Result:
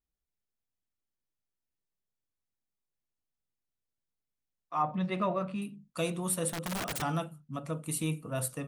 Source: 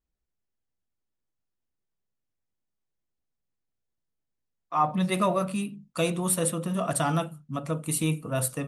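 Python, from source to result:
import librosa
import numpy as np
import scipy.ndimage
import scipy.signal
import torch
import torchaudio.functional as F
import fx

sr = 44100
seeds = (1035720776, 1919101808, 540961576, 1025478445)

y = fx.lowpass(x, sr, hz=3200.0, slope=12, at=(4.82, 5.62))
y = fx.overflow_wrap(y, sr, gain_db=23.5, at=(6.49, 7.02))
y = y * librosa.db_to_amplitude(-6.0)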